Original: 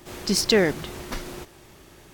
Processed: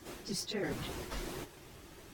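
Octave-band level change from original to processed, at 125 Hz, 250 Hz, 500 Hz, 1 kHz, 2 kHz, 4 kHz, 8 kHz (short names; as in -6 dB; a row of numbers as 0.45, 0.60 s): -11.0, -14.5, -17.0, -11.0, -15.0, -15.5, -14.0 dB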